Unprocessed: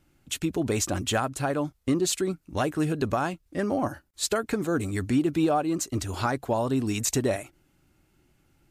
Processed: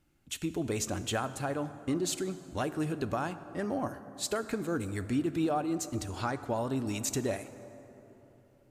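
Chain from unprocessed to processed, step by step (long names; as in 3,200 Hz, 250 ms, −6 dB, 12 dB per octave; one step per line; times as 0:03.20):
0:06.09–0:06.50: low-pass filter 10,000 Hz 12 dB per octave
dense smooth reverb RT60 3.7 s, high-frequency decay 0.45×, DRR 12 dB
level −6.5 dB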